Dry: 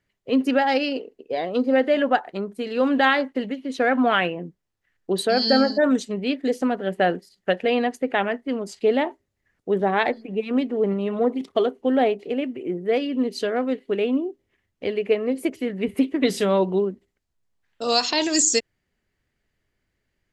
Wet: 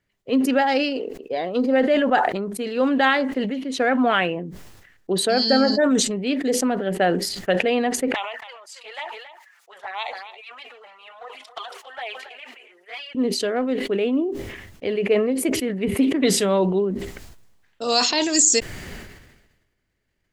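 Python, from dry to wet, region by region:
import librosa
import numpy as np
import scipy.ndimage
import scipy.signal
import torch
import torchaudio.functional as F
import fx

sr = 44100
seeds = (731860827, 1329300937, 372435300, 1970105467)

y = fx.chain(x, sr, fx.highpass(hz=900.0, slope=24),
    fx.env_flanger(rest_ms=6.4, full_db=-24.5),
    fx.echo_single(ms=276, db=-18.5), at=(8.14, 13.15))
y = fx.dynamic_eq(y, sr, hz=7800.0, q=2.0, threshold_db=-48.0, ratio=4.0, max_db=4)
y = fx.sustainer(y, sr, db_per_s=48.0)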